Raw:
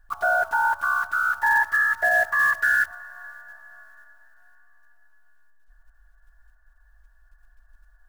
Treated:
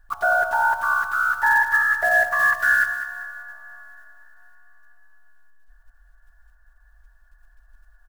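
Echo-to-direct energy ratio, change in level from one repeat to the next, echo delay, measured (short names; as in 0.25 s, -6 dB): -9.5 dB, -8.0 dB, 0.199 s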